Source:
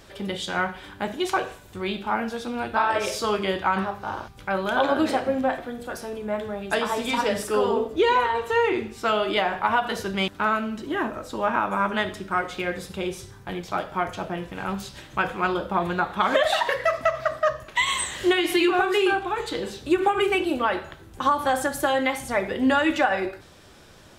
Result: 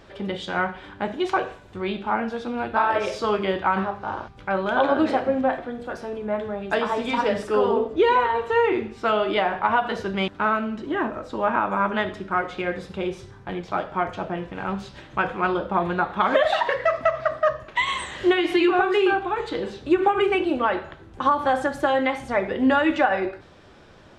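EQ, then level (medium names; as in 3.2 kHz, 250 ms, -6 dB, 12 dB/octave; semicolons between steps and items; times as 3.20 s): tape spacing loss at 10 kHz 20 dB; bass shelf 190 Hz -4 dB; +3.5 dB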